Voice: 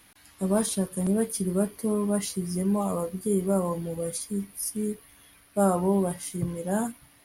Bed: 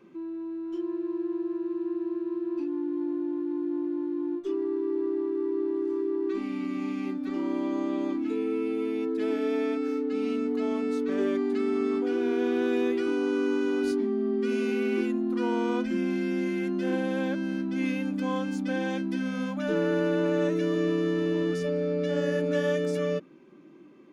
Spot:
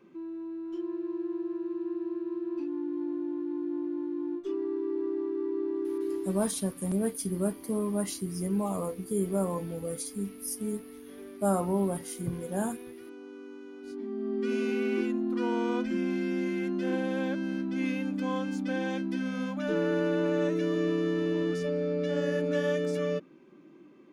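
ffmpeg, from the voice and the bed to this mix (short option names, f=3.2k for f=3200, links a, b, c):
-filter_complex "[0:a]adelay=5850,volume=-4dB[a];[1:a]volume=14dB,afade=t=out:st=6.14:d=0.25:silence=0.158489,afade=t=in:st=13.82:d=0.7:silence=0.141254[b];[a][b]amix=inputs=2:normalize=0"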